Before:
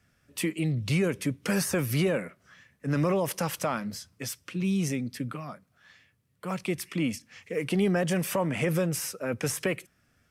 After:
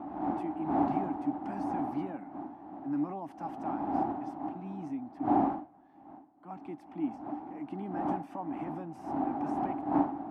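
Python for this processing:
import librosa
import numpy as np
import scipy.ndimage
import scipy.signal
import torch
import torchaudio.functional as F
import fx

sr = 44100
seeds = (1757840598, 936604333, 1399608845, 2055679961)

y = fx.dmg_wind(x, sr, seeds[0], corner_hz=590.0, level_db=-26.0)
y = fx.double_bandpass(y, sr, hz=480.0, octaves=1.4)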